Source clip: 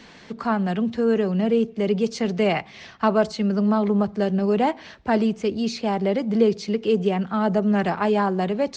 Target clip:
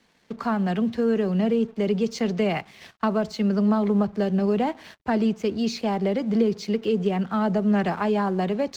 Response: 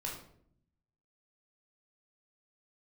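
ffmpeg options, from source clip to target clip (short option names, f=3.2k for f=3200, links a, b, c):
-filter_complex "[0:a]acrossover=split=270[a][b];[b]acompressor=threshold=-22dB:ratio=6[c];[a][c]amix=inputs=2:normalize=0,aeval=exprs='sgn(val(0))*max(abs(val(0))-0.00282,0)':c=same,agate=range=-12dB:threshold=-44dB:ratio=16:detection=peak"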